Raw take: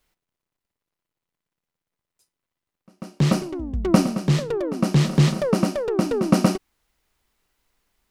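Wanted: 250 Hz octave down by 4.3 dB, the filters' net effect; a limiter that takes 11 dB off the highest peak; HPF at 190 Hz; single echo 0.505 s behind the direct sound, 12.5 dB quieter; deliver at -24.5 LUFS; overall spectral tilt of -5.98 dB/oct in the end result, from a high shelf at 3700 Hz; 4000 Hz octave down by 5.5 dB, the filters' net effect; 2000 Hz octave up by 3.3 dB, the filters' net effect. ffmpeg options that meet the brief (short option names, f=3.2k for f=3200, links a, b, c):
-af "highpass=190,equalizer=f=250:t=o:g=-3,equalizer=f=2k:t=o:g=7.5,highshelf=f=3.7k:g=-7,equalizer=f=4k:t=o:g=-5.5,alimiter=limit=-15.5dB:level=0:latency=1,aecho=1:1:505:0.237,volume=2.5dB"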